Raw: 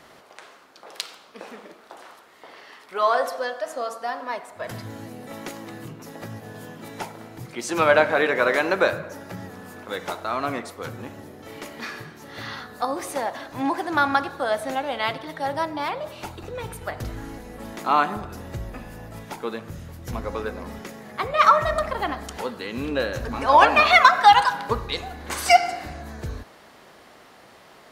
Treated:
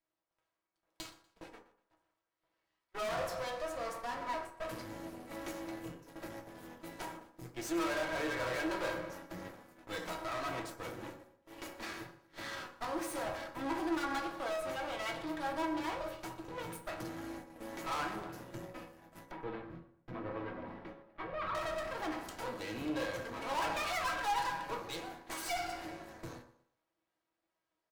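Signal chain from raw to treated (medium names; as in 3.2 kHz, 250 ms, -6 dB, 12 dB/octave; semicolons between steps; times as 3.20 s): high-pass 120 Hz 24 dB/octave; gate -38 dBFS, range -32 dB; level rider gain up to 4 dB; feedback comb 320 Hz, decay 0.24 s, harmonics all, mix 80%; half-wave rectifier; valve stage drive 28 dB, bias 0.7; 19.31–21.55 s: distance through air 410 m; feedback delay 121 ms, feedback 34%, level -19 dB; reverberation RT60 0.60 s, pre-delay 3 ms, DRR 2.5 dB; trim +7 dB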